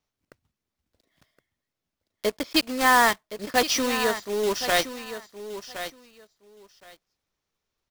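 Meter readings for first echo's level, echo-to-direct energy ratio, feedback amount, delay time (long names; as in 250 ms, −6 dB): −11.5 dB, −11.5 dB, 16%, 1,068 ms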